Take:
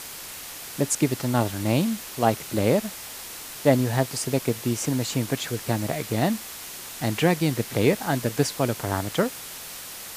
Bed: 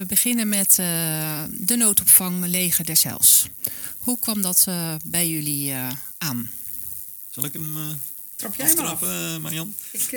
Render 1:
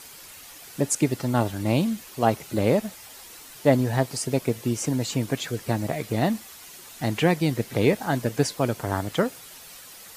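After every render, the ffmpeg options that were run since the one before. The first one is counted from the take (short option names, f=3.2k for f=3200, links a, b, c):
-af "afftdn=nr=9:nf=-39"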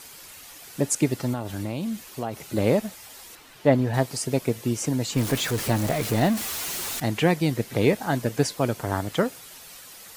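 -filter_complex "[0:a]asettb=1/sr,asplit=3[a][b][c];[a]atrim=end=1.334[d];[b]atrim=start=1.33:end=2.46,asetpts=PTS-STARTPTS,afade=t=in:d=0.004:c=qsin,afade=t=out:st=1.126:d=0.004:c=qsin,acompressor=threshold=-25dB:ratio=5:attack=3.2:release=140:knee=1:detection=peak[e];[c]atrim=start=2.456[f];[d][e]acrossfade=d=0.004:c1=hsin:c2=qsin[g];[g][f]acrossfade=d=0.004:c1=qsin:c2=hsin,asettb=1/sr,asplit=3[h][i][j];[h]atrim=end=3.354[k];[i]atrim=start=3.35:end=3.94,asetpts=PTS-STARTPTS,afade=t=in:d=0.004:c=qsin,afade=t=out:st=0.586:d=0.004:c=qsin,acrossover=split=4100[l][m];[m]acompressor=threshold=-54dB:ratio=4:attack=1:release=60[n];[l][n]amix=inputs=2:normalize=0[o];[j]atrim=start=3.936[p];[k][o]acrossfade=d=0.004:c1=hsin:c2=qsin[q];[q][p]acrossfade=d=0.004:c1=qsin:c2=hsin,asettb=1/sr,asplit=3[r][s][t];[r]atrim=end=5.164[u];[s]atrim=start=5.16:end=7,asetpts=PTS-STARTPTS,afade=t=in:d=0.004:c=qsin,afade=t=out:st=1.836:d=0.004:c=qsin,aeval=exprs='val(0)+0.5*0.0473*sgn(val(0))':c=same[v];[t]atrim=start=6.996[w];[u][v]acrossfade=d=0.004:c1=hsin:c2=qsin[x];[x][w]acrossfade=d=0.004:c1=qsin:c2=hsin"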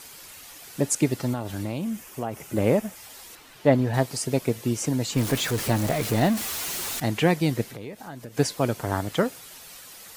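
-filter_complex "[0:a]asettb=1/sr,asplit=3[a][b][c];[a]atrim=end=1.784[d];[b]atrim=start=1.78:end=2.96,asetpts=PTS-STARTPTS,afade=t=in:d=0.004:c=qsin,afade=t=out:st=1.176:d=0.004:c=qsin,equalizer=f=4.1k:w=2.9:g=-10[e];[c]atrim=start=2.956[f];[d][e]acrossfade=d=0.004:c1=hsin:c2=qsin[g];[g][f]acrossfade=d=0.004:c1=qsin:c2=hsin,asettb=1/sr,asplit=3[h][i][j];[h]atrim=end=7.684[k];[i]atrim=start=7.68:end=8.37,asetpts=PTS-STARTPTS,afade=t=in:d=0.004:c=qsin,afade=t=out:st=0.686:d=0.004:c=qsin,acompressor=threshold=-39dB:ratio=3:attack=3.2:release=140:knee=1:detection=peak[l];[j]atrim=start=8.366[m];[k][l]acrossfade=d=0.004:c1=hsin:c2=qsin[n];[n][m]acrossfade=d=0.004:c1=qsin:c2=hsin"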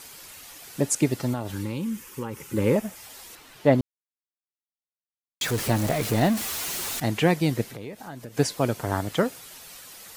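-filter_complex "[0:a]asettb=1/sr,asplit=3[a][b][c];[a]atrim=end=1.524[d];[b]atrim=start=1.52:end=2.76,asetpts=PTS-STARTPTS,afade=t=in:d=0.004:c=qsin,afade=t=out:st=1.236:d=0.004:c=qsin,asuperstop=centerf=680:order=8:qfactor=2.6[e];[c]atrim=start=2.756[f];[d][e]acrossfade=d=0.004:c1=hsin:c2=qsin[g];[g][f]acrossfade=d=0.004:c1=qsin:c2=hsin,asplit=3[h][i][j];[h]atrim=end=3.81,asetpts=PTS-STARTPTS,afade=t=out:st=3.806:d=0.004:c=hsin[k];[i]atrim=start=3.81:end=5.41,asetpts=PTS-STARTPTS,volume=0[l];[j]atrim=start=5.41,asetpts=PTS-STARTPTS,afade=t=in:d=0.004:c=hsin[m];[k][l][m]concat=n=3:v=0:a=1"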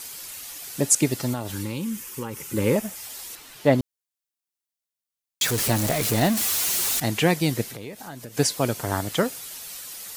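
-af "highshelf=f=3.3k:g=8.5"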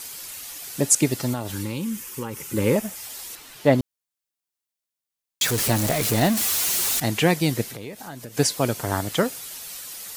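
-af "volume=1dB"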